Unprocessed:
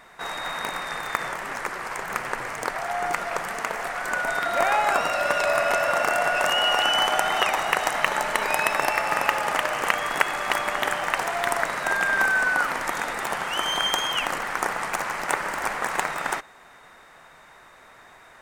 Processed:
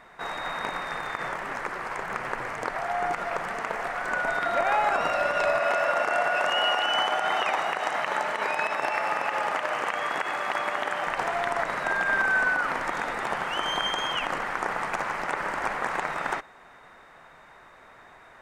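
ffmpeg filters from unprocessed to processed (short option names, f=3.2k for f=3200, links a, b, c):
-filter_complex "[0:a]asettb=1/sr,asplit=3[a][b][c];[a]atrim=end=5.594[d];[b]atrim=start=5.59:end=11.07,asetpts=PTS-STARTPTS,afade=t=in:d=0.004:c=qsin,afade=t=out:st=5.476:d=0.004:c=qsin,highpass=f=260:p=1[e];[c]atrim=start=11.066[f];[d][e]acrossfade=d=0.004:c1=hsin:c2=qsin[g];[g][f]acrossfade=d=0.004:c1=qsin:c2=hsin,acrossover=split=9600[h][i];[i]acompressor=threshold=-47dB:ratio=4:attack=1:release=60[j];[h][j]amix=inputs=2:normalize=0,highshelf=f=4.2k:g=-11.5,alimiter=limit=-14dB:level=0:latency=1:release=54"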